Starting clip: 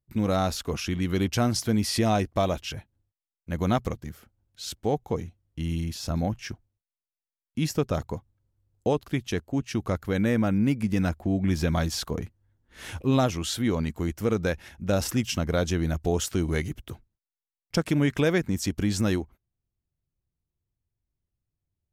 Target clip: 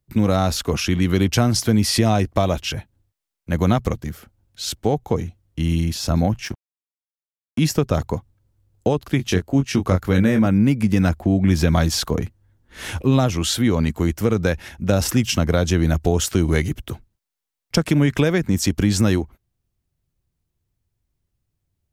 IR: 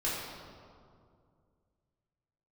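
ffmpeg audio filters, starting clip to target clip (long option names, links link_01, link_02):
-filter_complex "[0:a]asettb=1/sr,asplit=3[link_01][link_02][link_03];[link_01]atrim=end=6.454[link_04];[link_02]atrim=start=6.45:end=7.59,asetpts=PTS-STARTPTS,afade=type=in:duration=0.004:curve=qsin,afade=type=out:start_time=1.136:duration=0.004:curve=qsin,aeval=exprs='sgn(val(0))*max(abs(val(0))-0.00596,0)':channel_layout=same[link_05];[link_03]atrim=start=7.586[link_06];[link_04][link_05]acrossfade=duration=0.004:curve1=hsin:curve2=qsin[link_07];[link_07][link_06]acrossfade=duration=0.004:curve1=qsin:curve2=hsin,asettb=1/sr,asplit=3[link_08][link_09][link_10];[link_08]atrim=end=9.174[link_11];[link_09]atrim=start=9.17:end=10.46,asetpts=PTS-STARTPTS,afade=type=in:duration=0.004:curve=qsin,afade=type=out:start_time=1.286:duration=0.004:curve=qsin,asplit=2[link_12][link_13];[link_13]adelay=22,volume=-5.5dB[link_14];[link_12][link_14]amix=inputs=2:normalize=0,atrim=end_sample=56889[link_15];[link_10]atrim=start=10.456[link_16];[link_11][link_15]acrossfade=duration=0.004:curve1=hsin:curve2=qsin[link_17];[link_17][link_16]acrossfade=duration=0.004:curve1=qsin:curve2=hsin,acrossover=split=160[link_18][link_19];[link_19]acompressor=threshold=-25dB:ratio=4[link_20];[link_18][link_20]amix=inputs=2:normalize=0,volume=9dB"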